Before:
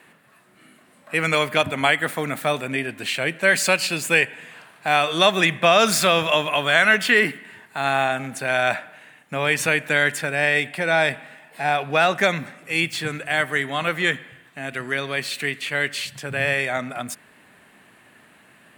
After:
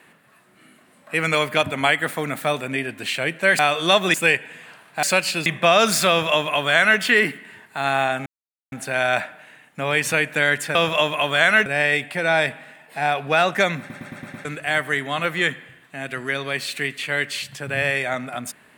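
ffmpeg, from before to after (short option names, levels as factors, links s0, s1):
-filter_complex "[0:a]asplit=14[s0][s1][s2][s3][s4][s5][s6][s7][s8][s9][s10][s11][s12][s13];[s0]atrim=end=3.592[s14];[s1]atrim=start=4.908:end=5.462[s15];[s2]atrim=start=4.018:end=4.912[s16];[s3]atrim=start=3.588:end=4.022[s17];[s4]atrim=start=5.458:end=8.26,asetpts=PTS-STARTPTS,afade=t=out:st=2.798:d=0.004:c=hsin,apad=pad_dur=0.46[s18];[s5]atrim=start=8.26:end=10.292,asetpts=PTS-STARTPTS,afade=t=in:d=0.004:c=hsin[s19];[s6]atrim=start=6.088:end=7.002[s20];[s7]atrim=start=10.288:end=12.532[s21];[s8]atrim=start=12.418:end=12.532[s22];[s9]atrim=start=12.418:end=12.532[s23];[s10]atrim=start=12.418:end=12.532[s24];[s11]atrim=start=12.418:end=12.532[s25];[s12]atrim=start=12.418:end=12.532[s26];[s13]atrim=start=13.078[s27];[s14][s15]acrossfade=d=0.004:c1=hsin:c2=hsin[s28];[s28][s16]acrossfade=d=0.004:c1=hsin:c2=hsin[s29];[s29][s17]acrossfade=d=0.004:c1=hsin:c2=hsin[s30];[s18][s19]concat=n=2:v=0:a=1[s31];[s30][s31]acrossfade=d=0.004:c1=hsin:c2=hsin[s32];[s32][s20]acrossfade=d=0.004:c1=hsin:c2=hsin[s33];[s33][s21]acrossfade=d=0.004:c1=hsin:c2=hsin[s34];[s34][s22]acrossfade=d=0.004:c1=hsin:c2=hsin[s35];[s35][s23]acrossfade=d=0.004:c1=hsin:c2=hsin[s36];[s36][s24]acrossfade=d=0.004:c1=hsin:c2=hsin[s37];[s37][s25]acrossfade=d=0.004:c1=hsin:c2=hsin[s38];[s38][s26]acrossfade=d=0.004:c1=hsin:c2=hsin[s39];[s39][s27]acrossfade=d=0.004:c1=hsin:c2=hsin"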